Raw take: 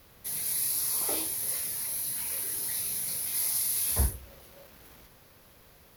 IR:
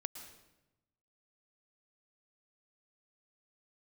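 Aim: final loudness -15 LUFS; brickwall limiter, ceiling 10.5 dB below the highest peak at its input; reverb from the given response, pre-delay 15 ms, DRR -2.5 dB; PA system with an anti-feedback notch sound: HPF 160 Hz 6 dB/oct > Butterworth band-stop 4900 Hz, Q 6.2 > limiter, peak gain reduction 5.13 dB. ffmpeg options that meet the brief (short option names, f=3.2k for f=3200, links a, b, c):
-filter_complex "[0:a]alimiter=limit=-24dB:level=0:latency=1,asplit=2[a][b];[1:a]atrim=start_sample=2205,adelay=15[c];[b][c]afir=irnorm=-1:irlink=0,volume=4.5dB[d];[a][d]amix=inputs=2:normalize=0,highpass=f=160:p=1,asuperstop=centerf=4900:order=8:qfactor=6.2,volume=14.5dB,alimiter=limit=-8dB:level=0:latency=1"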